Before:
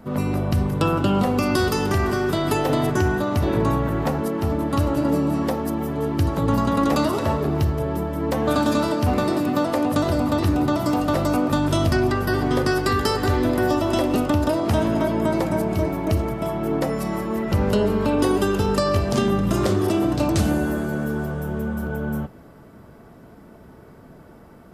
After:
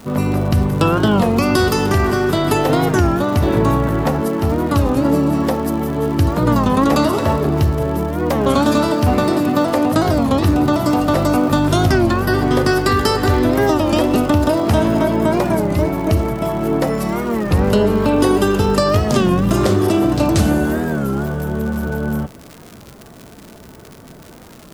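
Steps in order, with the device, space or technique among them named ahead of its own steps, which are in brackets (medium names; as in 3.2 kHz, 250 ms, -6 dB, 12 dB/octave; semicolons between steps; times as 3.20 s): warped LP (warped record 33 1/3 rpm, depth 160 cents; crackle 120 per s -31 dBFS; white noise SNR 42 dB); trim +5.5 dB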